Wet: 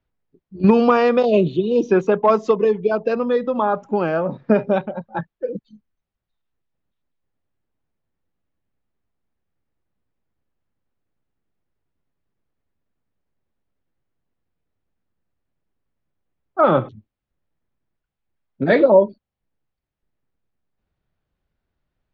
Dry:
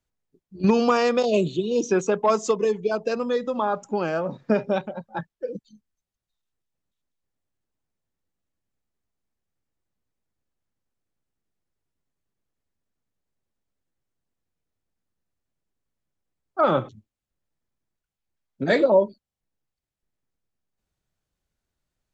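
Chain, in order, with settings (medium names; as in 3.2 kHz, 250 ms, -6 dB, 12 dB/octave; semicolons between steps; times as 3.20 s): distance through air 290 m; trim +6 dB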